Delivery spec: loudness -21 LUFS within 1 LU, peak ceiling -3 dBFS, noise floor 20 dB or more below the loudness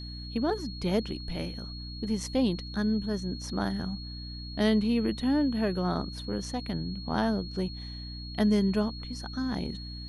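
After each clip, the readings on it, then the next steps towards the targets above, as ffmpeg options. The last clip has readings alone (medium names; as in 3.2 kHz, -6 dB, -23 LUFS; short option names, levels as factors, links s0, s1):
hum 60 Hz; highest harmonic 300 Hz; hum level -38 dBFS; steady tone 4.3 kHz; tone level -43 dBFS; loudness -30.5 LUFS; peak level -11.5 dBFS; loudness target -21.0 LUFS
-> -af "bandreject=f=60:t=h:w=4,bandreject=f=120:t=h:w=4,bandreject=f=180:t=h:w=4,bandreject=f=240:t=h:w=4,bandreject=f=300:t=h:w=4"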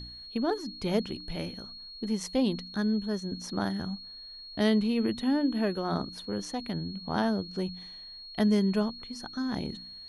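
hum not found; steady tone 4.3 kHz; tone level -43 dBFS
-> -af "bandreject=f=4300:w=30"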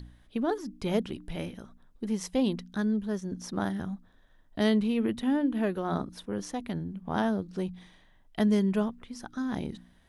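steady tone not found; loudness -31.0 LUFS; peak level -12.0 dBFS; loudness target -21.0 LUFS
-> -af "volume=3.16,alimiter=limit=0.708:level=0:latency=1"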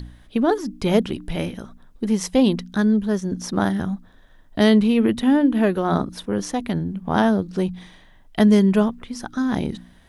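loudness -21.0 LUFS; peak level -3.0 dBFS; noise floor -50 dBFS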